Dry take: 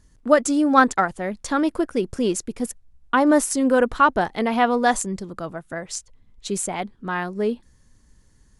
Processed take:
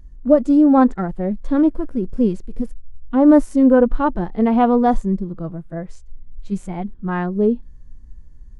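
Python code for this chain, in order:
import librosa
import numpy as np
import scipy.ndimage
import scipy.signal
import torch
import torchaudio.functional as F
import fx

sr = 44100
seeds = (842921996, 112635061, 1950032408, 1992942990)

y = fx.tilt_eq(x, sr, slope=-3.5)
y = fx.hpss(y, sr, part='percussive', gain_db=-16)
y = y * librosa.db_to_amplitude(1.0)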